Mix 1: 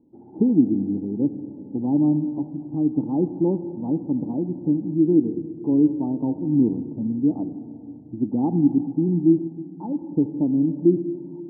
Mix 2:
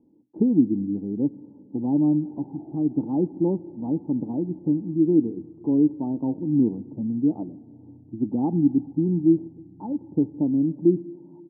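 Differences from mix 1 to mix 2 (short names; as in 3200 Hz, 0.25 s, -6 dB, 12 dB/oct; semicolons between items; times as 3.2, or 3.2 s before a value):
speech: send -10.5 dB; background: entry +2.10 s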